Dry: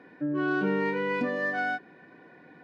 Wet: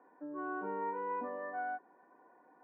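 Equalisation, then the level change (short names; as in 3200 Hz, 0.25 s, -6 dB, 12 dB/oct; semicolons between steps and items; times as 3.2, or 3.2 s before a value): HPF 210 Hz 24 dB/oct; ladder low-pass 1100 Hz, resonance 55%; tilt +3 dB/oct; 0.0 dB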